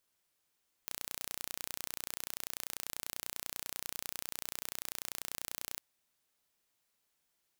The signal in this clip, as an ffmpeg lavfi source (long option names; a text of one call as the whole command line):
ffmpeg -f lavfi -i "aevalsrc='0.266*eq(mod(n,1460),0)':duration=4.91:sample_rate=44100" out.wav